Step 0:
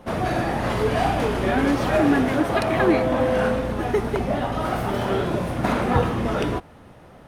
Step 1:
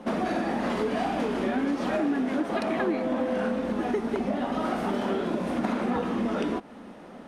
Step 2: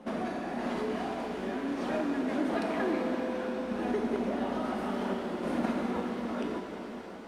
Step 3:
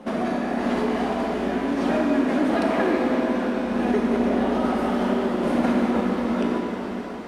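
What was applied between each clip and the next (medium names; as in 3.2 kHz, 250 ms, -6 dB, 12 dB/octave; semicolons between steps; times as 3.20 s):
resonant low shelf 160 Hz -10.5 dB, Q 3; compression 5:1, threshold -26 dBFS, peak gain reduction 14 dB; low-pass 9.1 kHz 12 dB/octave; trim +1 dB
random-step tremolo 3.5 Hz; pitch-shifted reverb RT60 3.7 s, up +7 st, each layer -8 dB, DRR 2 dB; trim -4.5 dB
reverberation RT60 2.8 s, pre-delay 54 ms, DRR 4 dB; trim +7.5 dB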